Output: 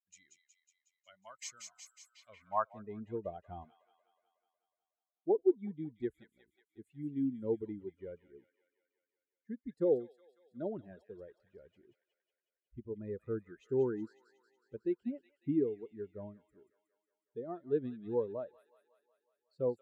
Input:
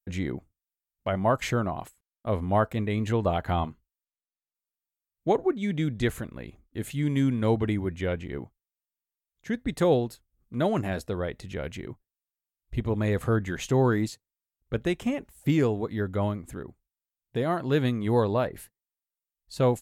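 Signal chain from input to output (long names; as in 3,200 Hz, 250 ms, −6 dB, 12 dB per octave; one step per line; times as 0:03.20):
spectral dynamics exaggerated over time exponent 2
delay with a high-pass on its return 183 ms, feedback 63%, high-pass 2,300 Hz, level −4.5 dB
band-pass filter sweep 6,400 Hz → 380 Hz, 0:02.06–0:02.88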